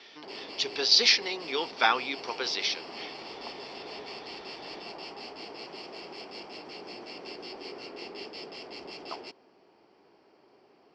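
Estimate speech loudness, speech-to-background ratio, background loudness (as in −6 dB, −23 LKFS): −25.5 LKFS, 16.0 dB, −41.5 LKFS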